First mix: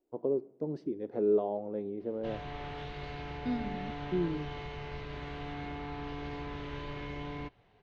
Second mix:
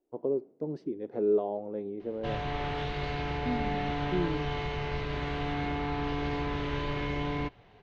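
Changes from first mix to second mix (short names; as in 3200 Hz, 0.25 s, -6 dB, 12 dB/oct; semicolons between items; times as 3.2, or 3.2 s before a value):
background +8.0 dB; reverb: off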